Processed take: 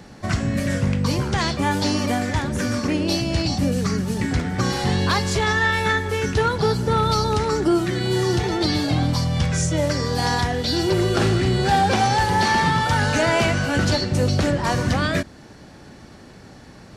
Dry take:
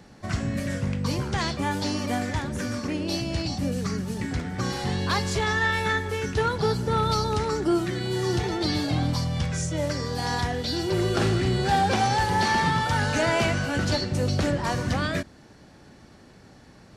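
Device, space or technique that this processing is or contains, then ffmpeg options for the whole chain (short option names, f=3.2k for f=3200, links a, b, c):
clipper into limiter: -af "asoftclip=type=hard:threshold=-14.5dB,alimiter=limit=-17.5dB:level=0:latency=1:release=482,volume=7dB"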